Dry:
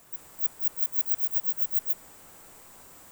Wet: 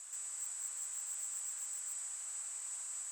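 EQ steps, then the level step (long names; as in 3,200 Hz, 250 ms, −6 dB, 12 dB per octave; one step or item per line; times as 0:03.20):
high-pass filter 1,200 Hz 12 dB per octave
low-pass with resonance 7,800 Hz, resonance Q 12
−1.5 dB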